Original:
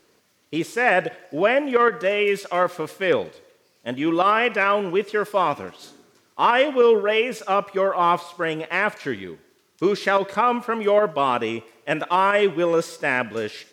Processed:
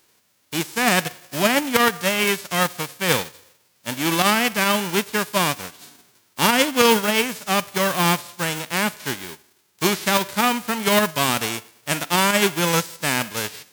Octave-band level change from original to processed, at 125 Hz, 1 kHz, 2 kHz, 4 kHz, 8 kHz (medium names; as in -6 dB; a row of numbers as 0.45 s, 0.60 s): +8.0 dB, -1.5 dB, +2.0 dB, +9.5 dB, no reading